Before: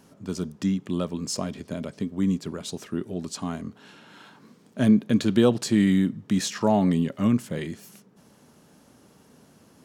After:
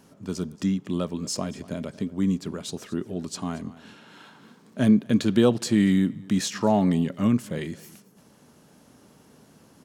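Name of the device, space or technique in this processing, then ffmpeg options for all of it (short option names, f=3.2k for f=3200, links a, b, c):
ducked delay: -filter_complex "[0:a]asplit=3[a][b][c];[b]adelay=229,volume=-7.5dB[d];[c]apad=whole_len=444430[e];[d][e]sidechaincompress=threshold=-38dB:ratio=5:attack=16:release=1040[f];[a][f]amix=inputs=2:normalize=0"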